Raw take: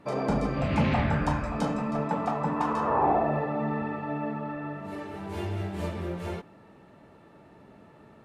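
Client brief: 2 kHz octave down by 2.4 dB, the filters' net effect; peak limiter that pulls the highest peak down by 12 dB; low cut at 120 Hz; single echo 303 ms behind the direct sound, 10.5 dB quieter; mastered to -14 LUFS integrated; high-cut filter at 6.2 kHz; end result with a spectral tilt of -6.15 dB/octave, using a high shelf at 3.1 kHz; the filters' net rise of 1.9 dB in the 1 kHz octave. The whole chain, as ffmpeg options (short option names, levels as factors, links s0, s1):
-af "highpass=120,lowpass=6200,equalizer=f=1000:t=o:g=3,equalizer=f=2000:t=o:g=-6,highshelf=f=3100:g=6,alimiter=limit=0.0631:level=0:latency=1,aecho=1:1:303:0.299,volume=8.91"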